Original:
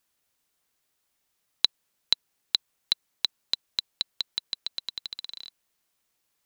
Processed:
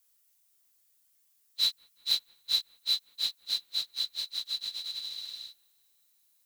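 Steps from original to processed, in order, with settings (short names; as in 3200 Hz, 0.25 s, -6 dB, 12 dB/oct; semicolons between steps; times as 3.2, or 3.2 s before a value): phase scrambler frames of 0.1 s; pre-emphasis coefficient 0.8; soft clip -22.5 dBFS, distortion -18 dB; on a send: dark delay 0.185 s, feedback 73%, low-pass 2000 Hz, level -24 dB; on the sum: gain +5.5 dB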